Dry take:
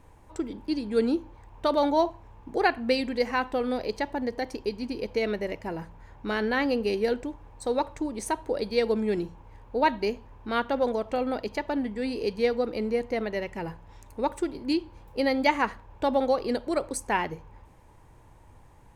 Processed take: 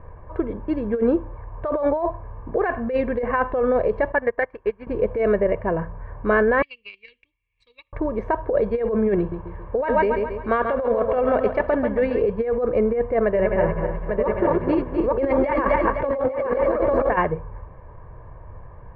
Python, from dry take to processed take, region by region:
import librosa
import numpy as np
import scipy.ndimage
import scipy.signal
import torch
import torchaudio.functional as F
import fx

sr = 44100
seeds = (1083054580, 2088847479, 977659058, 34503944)

y = fx.chain(x, sr, fx.peak_eq(hz=2000.0, db=14.5, octaves=2.2),
    fx.upward_expand(threshold_db=-37.0, expansion=2.5), at=(4.12, 4.87))
y = fx.chain(y, sr, fx.ellip_highpass(hz=2400.0, order=4, stop_db=40),
    fx.transient(attack_db=8, sustain_db=-7), at=(6.62, 7.93))
y = fx.chain(y, sr, fx.high_shelf(hz=2400.0, db=8.0),
    fx.echo_feedback(ms=137, feedback_pct=46, wet_db=-9.0), at=(9.18, 12.22))
y = fx.chain(y, sr, fx.reverse_delay_fb(ms=126, feedback_pct=60, wet_db=-3.5),
    fx.echo_single(ms=849, db=-4.5), at=(13.24, 17.16))
y = scipy.signal.sosfilt(scipy.signal.butter(4, 1700.0, 'lowpass', fs=sr, output='sos'), y)
y = y + 0.6 * np.pad(y, (int(1.8 * sr / 1000.0), 0))[:len(y)]
y = fx.over_compress(y, sr, threshold_db=-27.0, ratio=-1.0)
y = y * 10.0 ** (7.5 / 20.0)